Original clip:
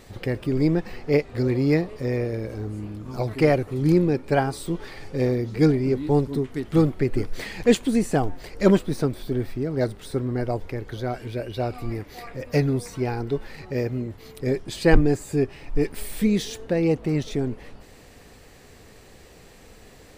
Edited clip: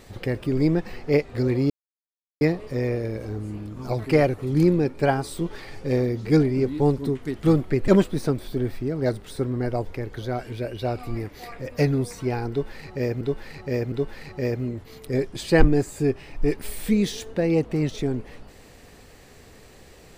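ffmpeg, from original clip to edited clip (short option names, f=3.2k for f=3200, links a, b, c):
-filter_complex "[0:a]asplit=5[a][b][c][d][e];[a]atrim=end=1.7,asetpts=PTS-STARTPTS,afade=t=out:st=1.696:d=0.004:c=hsin,apad=pad_dur=0.71[f];[b]atrim=start=1.7:end=7.172,asetpts=PTS-STARTPTS,afade=t=in:d=0.004:c=hsin[g];[c]atrim=start=8.628:end=13.962[h];[d]atrim=start=13.248:end=13.962[i];[e]atrim=start=13.248[j];[f][g]concat=n=2:v=0:a=1[k];[k][h]acrossfade=d=0.004:c1=hsin:c2=hsin[l];[l][i]acrossfade=d=0.004:c1=hsin:c2=hsin[m];[m][j]acrossfade=d=0.004:c1=hsin:c2=hsin"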